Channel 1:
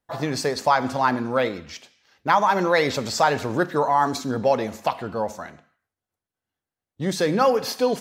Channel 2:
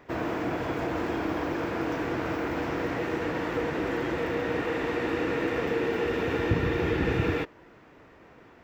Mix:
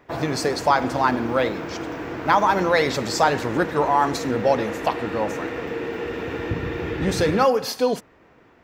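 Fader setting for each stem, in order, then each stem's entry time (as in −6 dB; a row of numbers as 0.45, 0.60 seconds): +0.5, −1.0 decibels; 0.00, 0.00 seconds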